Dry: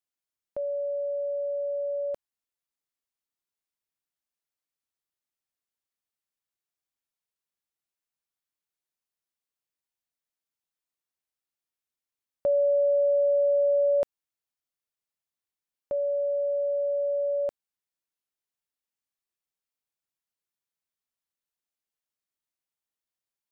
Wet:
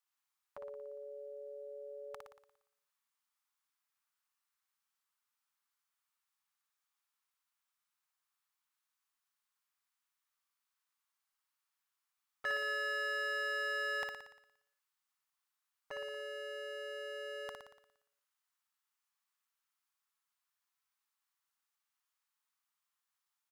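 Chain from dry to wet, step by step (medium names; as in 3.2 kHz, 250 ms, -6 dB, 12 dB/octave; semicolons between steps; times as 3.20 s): dynamic bell 390 Hz, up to -5 dB, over -47 dBFS, Q 5.6; overload inside the chain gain 25.5 dB; resonant low shelf 760 Hz -14 dB, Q 3; harmony voices -5 st -8 dB; on a send: flutter echo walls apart 10 m, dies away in 0.78 s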